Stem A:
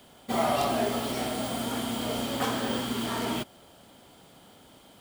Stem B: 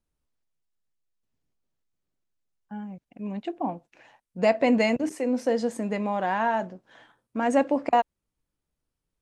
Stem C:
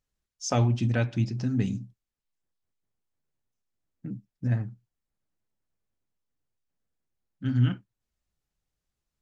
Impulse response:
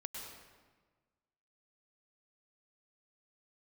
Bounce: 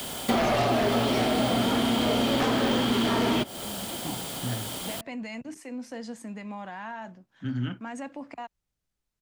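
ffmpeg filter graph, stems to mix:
-filter_complex "[0:a]highshelf=f=3500:g=10.5,acrossover=split=4000[s0][s1];[s1]acompressor=threshold=0.00398:ratio=4:attack=1:release=60[s2];[s0][s2]amix=inputs=2:normalize=0,aeval=exprs='0.2*sin(PI/2*2.82*val(0)/0.2)':c=same,volume=1.41[s3];[1:a]equalizer=f=480:w=0.95:g=-11,alimiter=limit=0.0631:level=0:latency=1:release=102,adelay=450,volume=0.562[s4];[2:a]volume=0.891[s5];[s3][s4][s5]amix=inputs=3:normalize=0,acrossover=split=200|620[s6][s7][s8];[s6]acompressor=threshold=0.0178:ratio=4[s9];[s7]acompressor=threshold=0.0501:ratio=4[s10];[s8]acompressor=threshold=0.0316:ratio=4[s11];[s9][s10][s11]amix=inputs=3:normalize=0"

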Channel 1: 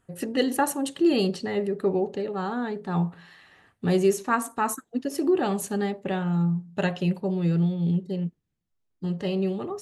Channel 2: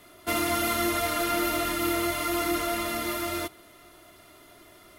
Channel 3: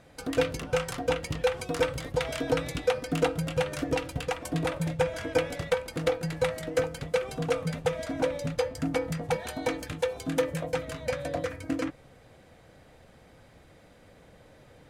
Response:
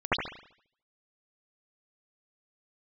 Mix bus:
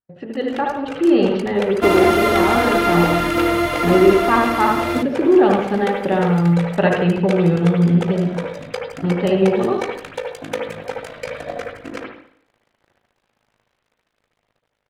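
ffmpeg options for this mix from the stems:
-filter_complex "[0:a]agate=range=0.0562:threshold=0.00631:ratio=16:detection=peak,lowpass=f=3800:w=0.5412,lowpass=f=3800:w=1.3066,equalizer=f=760:w=0.6:g=4,volume=0.596,asplit=2[s0][s1];[s1]volume=0.178[s2];[1:a]aemphasis=mode=reproduction:type=cd,adelay=1550,volume=1.26[s3];[2:a]lowshelf=f=440:g=-11,tremolo=f=53:d=0.857,aeval=exprs='sgn(val(0))*max(abs(val(0))-0.00141,0)':c=same,adelay=150,volume=0.708,asplit=2[s4][s5];[s5]volume=0.188[s6];[3:a]atrim=start_sample=2205[s7];[s2][s6]amix=inputs=2:normalize=0[s8];[s8][s7]afir=irnorm=-1:irlink=0[s9];[s0][s3][s4][s9]amix=inputs=4:normalize=0,highshelf=f=4700:g=-7,dynaudnorm=f=420:g=5:m=3.76"

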